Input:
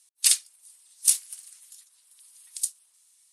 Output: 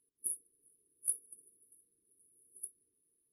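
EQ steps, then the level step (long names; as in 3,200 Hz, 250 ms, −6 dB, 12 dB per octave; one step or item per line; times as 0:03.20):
linear-phase brick-wall band-stop 480–9,700 Hz
high-frequency loss of the air 110 metres
high-shelf EQ 8,200 Hz −9.5 dB
+14.5 dB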